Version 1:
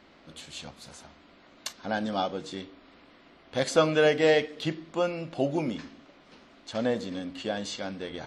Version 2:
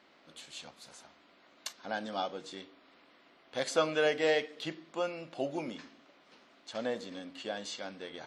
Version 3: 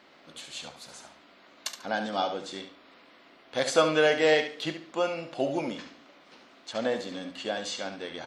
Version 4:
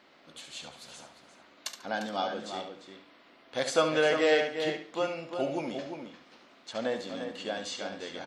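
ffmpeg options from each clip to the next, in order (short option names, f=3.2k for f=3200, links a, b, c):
-af "highpass=f=410:p=1,volume=-4.5dB"
-af "aecho=1:1:71|142|213:0.355|0.0816|0.0188,volume=6dB"
-filter_complex "[0:a]asplit=2[a][b];[b]adelay=349.9,volume=-7dB,highshelf=f=4k:g=-7.87[c];[a][c]amix=inputs=2:normalize=0,volume=-3dB"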